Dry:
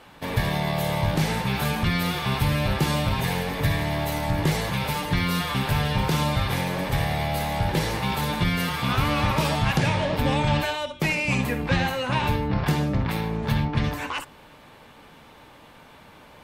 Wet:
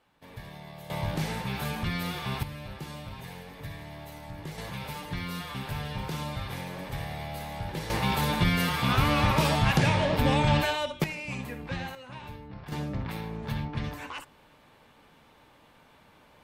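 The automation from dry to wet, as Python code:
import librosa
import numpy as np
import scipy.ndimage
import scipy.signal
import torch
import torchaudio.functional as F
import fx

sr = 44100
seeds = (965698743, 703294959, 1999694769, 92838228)

y = fx.gain(x, sr, db=fx.steps((0.0, -19.5), (0.9, -7.5), (2.43, -17.0), (4.58, -11.0), (7.9, -1.0), (11.04, -12.0), (11.95, -19.0), (12.72, -9.0)))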